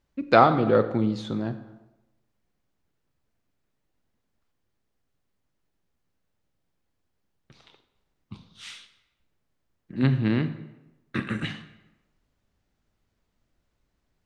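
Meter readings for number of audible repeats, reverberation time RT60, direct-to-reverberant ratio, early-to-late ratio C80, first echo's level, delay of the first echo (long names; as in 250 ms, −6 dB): no echo audible, 1.0 s, 11.0 dB, 14.0 dB, no echo audible, no echo audible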